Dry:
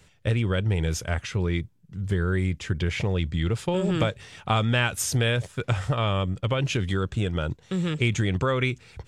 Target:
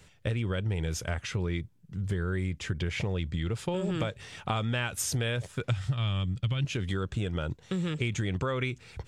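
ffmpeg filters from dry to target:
-filter_complex "[0:a]asettb=1/sr,asplit=3[s0][s1][s2];[s0]atrim=end=5.704[s3];[s1]atrim=start=5.7:end=6.65,asetpts=PTS-STARTPTS,afade=t=in:d=0.004:c=qsin,afade=t=out:st=0.946:d=0.004:c=qsin,equalizer=f=125:t=o:w=1:g=8,equalizer=f=500:t=o:w=1:g=-9,equalizer=f=1000:t=o:w=1:g=-5,equalizer=f=4000:t=o:w=1:g=6[s4];[s2]atrim=start=6.646[s5];[s3][s4]acrossfade=d=0.004:c1=hsin:c2=qsin[s6];[s6][s5]acrossfade=d=0.004:c1=qsin:c2=hsin,acompressor=threshold=0.0355:ratio=3"

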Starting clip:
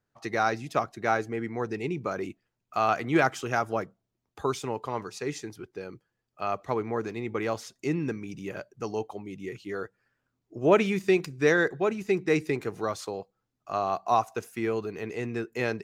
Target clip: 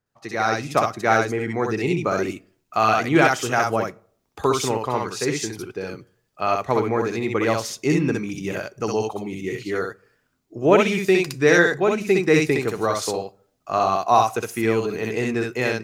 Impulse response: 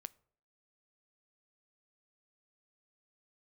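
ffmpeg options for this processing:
-filter_complex "[0:a]dynaudnorm=f=190:g=5:m=2.82,asplit=2[s0][s1];[1:a]atrim=start_sample=2205,highshelf=f=2700:g=11,adelay=63[s2];[s1][s2]afir=irnorm=-1:irlink=0,volume=1[s3];[s0][s3]amix=inputs=2:normalize=0,volume=0.891"

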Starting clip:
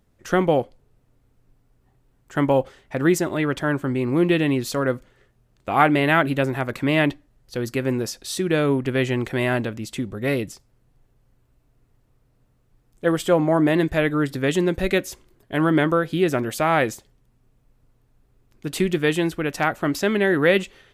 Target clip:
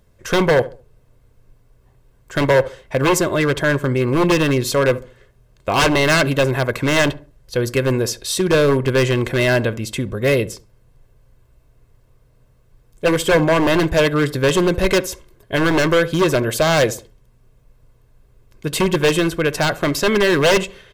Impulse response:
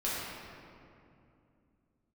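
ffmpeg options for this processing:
-filter_complex "[0:a]aeval=exprs='0.168*(abs(mod(val(0)/0.168+3,4)-2)-1)':c=same,aecho=1:1:1.9:0.45,asplit=2[s0][s1];[s1]adelay=69,lowpass=f=1200:p=1,volume=0.158,asplit=2[s2][s3];[s3]adelay=69,lowpass=f=1200:p=1,volume=0.35,asplit=2[s4][s5];[s5]adelay=69,lowpass=f=1200:p=1,volume=0.35[s6];[s0][s2][s4][s6]amix=inputs=4:normalize=0,volume=2.11"

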